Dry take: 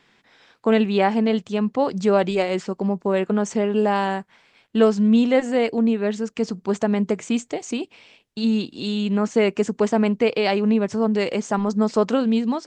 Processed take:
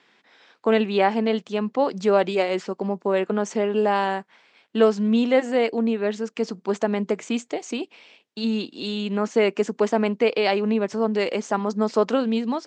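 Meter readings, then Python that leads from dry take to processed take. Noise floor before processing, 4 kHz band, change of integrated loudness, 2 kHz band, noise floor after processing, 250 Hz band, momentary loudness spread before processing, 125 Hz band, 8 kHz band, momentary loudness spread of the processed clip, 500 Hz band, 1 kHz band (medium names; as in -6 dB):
-61 dBFS, -0.5 dB, -2.0 dB, 0.0 dB, -64 dBFS, -4.0 dB, 8 LU, no reading, -3.0 dB, 8 LU, -0.5 dB, 0.0 dB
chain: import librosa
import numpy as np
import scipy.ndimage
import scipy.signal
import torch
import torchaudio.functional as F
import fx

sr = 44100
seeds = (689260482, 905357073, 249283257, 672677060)

y = fx.bandpass_edges(x, sr, low_hz=250.0, high_hz=6700.0)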